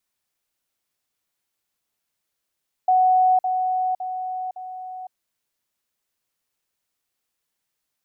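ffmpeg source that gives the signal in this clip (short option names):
-f lavfi -i "aevalsrc='pow(10,(-13.5-6*floor(t/0.56))/20)*sin(2*PI*742*t)*clip(min(mod(t,0.56),0.51-mod(t,0.56))/0.005,0,1)':d=2.24:s=44100"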